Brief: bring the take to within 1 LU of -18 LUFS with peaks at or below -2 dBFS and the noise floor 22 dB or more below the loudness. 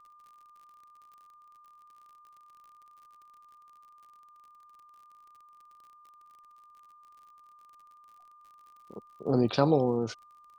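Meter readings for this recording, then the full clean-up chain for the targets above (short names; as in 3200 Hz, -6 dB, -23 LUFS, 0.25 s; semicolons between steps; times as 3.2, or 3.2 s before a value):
ticks 52/s; steady tone 1200 Hz; tone level -54 dBFS; loudness -27.5 LUFS; peak -10.0 dBFS; loudness target -18.0 LUFS
-> de-click; notch 1200 Hz, Q 30; gain +9.5 dB; limiter -2 dBFS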